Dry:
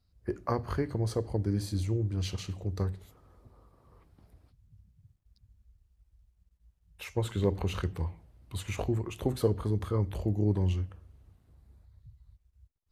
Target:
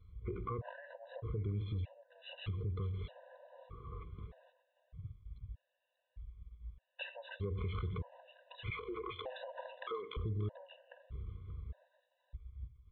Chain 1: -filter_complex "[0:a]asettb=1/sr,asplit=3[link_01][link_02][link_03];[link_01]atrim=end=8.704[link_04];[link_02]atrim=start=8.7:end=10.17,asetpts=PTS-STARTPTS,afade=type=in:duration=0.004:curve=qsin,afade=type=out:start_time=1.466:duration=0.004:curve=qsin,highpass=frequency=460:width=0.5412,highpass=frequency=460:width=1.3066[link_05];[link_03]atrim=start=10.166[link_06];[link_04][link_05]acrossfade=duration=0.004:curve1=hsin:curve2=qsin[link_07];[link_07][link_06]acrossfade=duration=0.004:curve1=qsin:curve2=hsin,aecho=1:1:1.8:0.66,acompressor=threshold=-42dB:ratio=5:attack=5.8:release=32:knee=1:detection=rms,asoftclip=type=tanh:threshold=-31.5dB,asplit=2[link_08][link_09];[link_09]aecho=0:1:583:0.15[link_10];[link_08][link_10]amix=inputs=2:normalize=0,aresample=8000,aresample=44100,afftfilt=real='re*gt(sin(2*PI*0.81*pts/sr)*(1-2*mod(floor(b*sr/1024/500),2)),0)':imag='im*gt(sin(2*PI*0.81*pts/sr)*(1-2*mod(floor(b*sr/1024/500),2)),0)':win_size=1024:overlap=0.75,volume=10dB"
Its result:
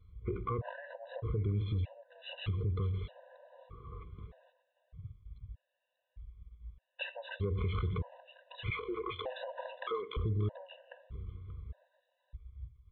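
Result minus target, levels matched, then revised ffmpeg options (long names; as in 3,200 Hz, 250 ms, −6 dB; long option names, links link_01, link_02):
downward compressor: peak gain reduction −5 dB
-filter_complex "[0:a]asettb=1/sr,asplit=3[link_01][link_02][link_03];[link_01]atrim=end=8.704[link_04];[link_02]atrim=start=8.7:end=10.17,asetpts=PTS-STARTPTS,afade=type=in:duration=0.004:curve=qsin,afade=type=out:start_time=1.466:duration=0.004:curve=qsin,highpass=frequency=460:width=0.5412,highpass=frequency=460:width=1.3066[link_05];[link_03]atrim=start=10.166[link_06];[link_04][link_05]acrossfade=duration=0.004:curve1=hsin:curve2=qsin[link_07];[link_07][link_06]acrossfade=duration=0.004:curve1=qsin:curve2=hsin,aecho=1:1:1.8:0.66,acompressor=threshold=-48.5dB:ratio=5:attack=5.8:release=32:knee=1:detection=rms,asoftclip=type=tanh:threshold=-31.5dB,asplit=2[link_08][link_09];[link_09]aecho=0:1:583:0.15[link_10];[link_08][link_10]amix=inputs=2:normalize=0,aresample=8000,aresample=44100,afftfilt=real='re*gt(sin(2*PI*0.81*pts/sr)*(1-2*mod(floor(b*sr/1024/500),2)),0)':imag='im*gt(sin(2*PI*0.81*pts/sr)*(1-2*mod(floor(b*sr/1024/500),2)),0)':win_size=1024:overlap=0.75,volume=10dB"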